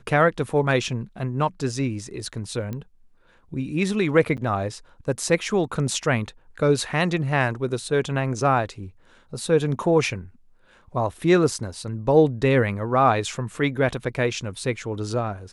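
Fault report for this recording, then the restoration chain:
2.73 s: pop -19 dBFS
4.37–4.38 s: dropout 8.4 ms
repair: de-click; interpolate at 4.37 s, 8.4 ms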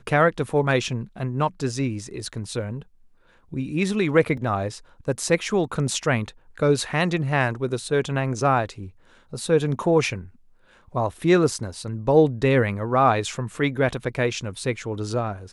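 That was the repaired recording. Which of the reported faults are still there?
nothing left

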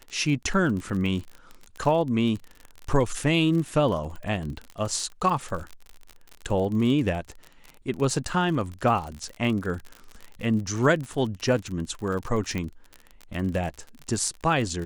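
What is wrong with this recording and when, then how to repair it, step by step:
crackle 44 per s -31 dBFS
12.58 s: pop -17 dBFS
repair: de-click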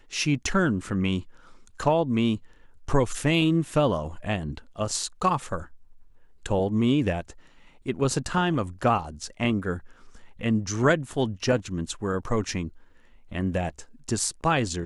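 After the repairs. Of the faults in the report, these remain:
12.58 s: pop

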